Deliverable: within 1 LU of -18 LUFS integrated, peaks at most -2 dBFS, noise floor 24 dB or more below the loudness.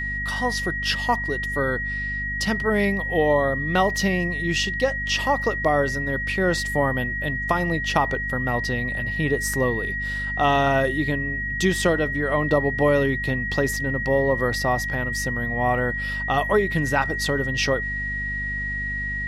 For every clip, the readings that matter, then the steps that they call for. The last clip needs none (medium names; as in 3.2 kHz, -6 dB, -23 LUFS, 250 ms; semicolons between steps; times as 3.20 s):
hum 50 Hz; highest harmonic 250 Hz; hum level -30 dBFS; steady tone 1.9 kHz; tone level -26 dBFS; loudness -22.5 LUFS; peak level -7.0 dBFS; loudness target -18.0 LUFS
-> hum notches 50/100/150/200/250 Hz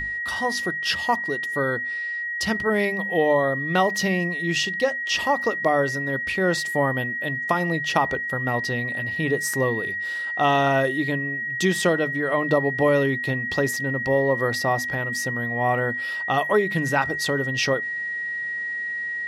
hum not found; steady tone 1.9 kHz; tone level -26 dBFS
-> band-stop 1.9 kHz, Q 30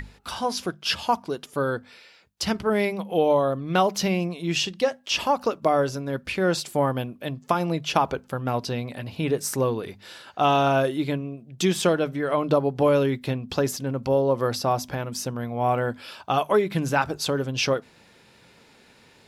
steady tone not found; loudness -25.0 LUFS; peak level -6.5 dBFS; loudness target -18.0 LUFS
-> trim +7 dB; peak limiter -2 dBFS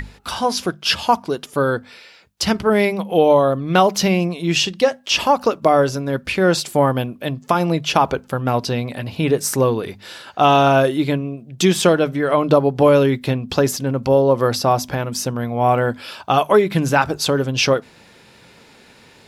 loudness -18.0 LUFS; peak level -2.0 dBFS; noise floor -48 dBFS